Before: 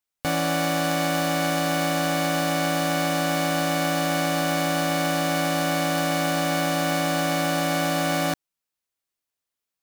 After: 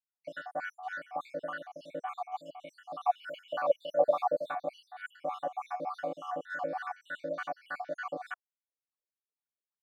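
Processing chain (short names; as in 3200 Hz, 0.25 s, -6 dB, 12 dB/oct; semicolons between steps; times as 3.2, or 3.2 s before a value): random spectral dropouts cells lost 70%; wah 3.4 Hz 450–1500 Hz, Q 4.8; 3.05–4.52 EQ curve 300 Hz 0 dB, 620 Hz +13 dB, 1000 Hz +8 dB, 2000 Hz -9 dB, 2900 Hz +13 dB, 4600 Hz -2 dB, 7700 Hz -2 dB, 14000 Hz +7 dB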